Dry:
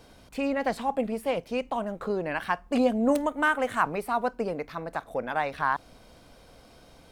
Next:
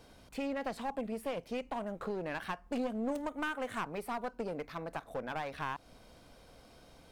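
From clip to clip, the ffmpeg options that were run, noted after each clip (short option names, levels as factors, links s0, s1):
-af "acompressor=threshold=0.0355:ratio=2.5,aeval=exprs='clip(val(0),-1,0.0266)':c=same,volume=0.596"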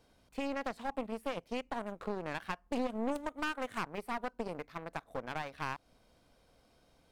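-af "aeval=exprs='0.075*(cos(1*acos(clip(val(0)/0.075,-1,1)))-cos(1*PI/2))+0.0075*(cos(7*acos(clip(val(0)/0.075,-1,1)))-cos(7*PI/2))':c=same,volume=1.12"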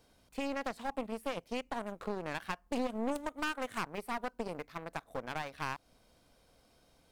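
-af "highshelf=f=4900:g=5.5"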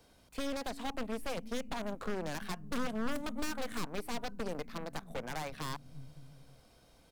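-filter_complex "[0:a]acrossover=split=210[s0][s1];[s0]aecho=1:1:340|561|704.6|798|858.7:0.631|0.398|0.251|0.158|0.1[s2];[s1]aeval=exprs='0.0178*(abs(mod(val(0)/0.0178+3,4)-2)-1)':c=same[s3];[s2][s3]amix=inputs=2:normalize=0,volume=1.41"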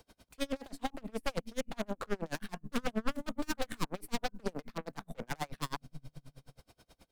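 -af "aeval=exprs='val(0)*pow(10,-34*(0.5-0.5*cos(2*PI*9.4*n/s))/20)':c=same,volume=2.24"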